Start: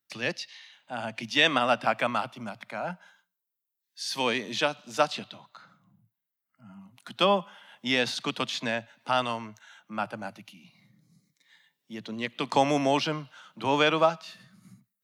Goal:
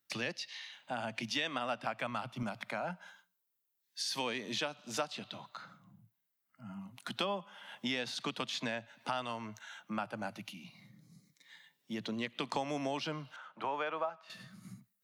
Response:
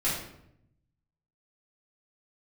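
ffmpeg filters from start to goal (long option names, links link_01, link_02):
-filter_complex "[0:a]asettb=1/sr,asplit=3[link_01][link_02][link_03];[link_01]atrim=end=13.364[link_04];[link_02]atrim=start=13.36:end=14.3,asetpts=PTS-STARTPTS,afade=type=in:duration=0.004:curve=qsin,afade=type=out:start_time=0.936:duration=0.004:curve=qsin,acrossover=split=470 2100:gain=0.178 1 0.141[link_05][link_06][link_07];[link_05][link_06][link_07]amix=inputs=3:normalize=0[link_08];[link_03]atrim=start=14.296[link_09];[link_04][link_08]acrossfade=duration=0.004:curve1=hsin:curve2=qsin[link_10];[link_10][link_09]acrossfade=duration=0.004:curve1=qsin:curve2=hsin,acompressor=threshold=-38dB:ratio=4,asettb=1/sr,asplit=3[link_11][link_12][link_13];[link_11]atrim=end=1.804[link_14];[link_12]atrim=start=1.8:end=2.43,asetpts=PTS-STARTPTS,afade=type=in:duration=0.004:curve=qsin,afade=type=out:start_time=0.626:duration=0.004:curve=qsin,asubboost=boost=11.5:cutoff=210[link_15];[link_13]atrim=start=2.426[link_16];[link_14][link_15]acrossfade=duration=0.004:curve1=hsin:curve2=qsin[link_17];[link_17][link_16]acrossfade=duration=0.004:curve1=qsin:curve2=hsin,volume=2.5dB"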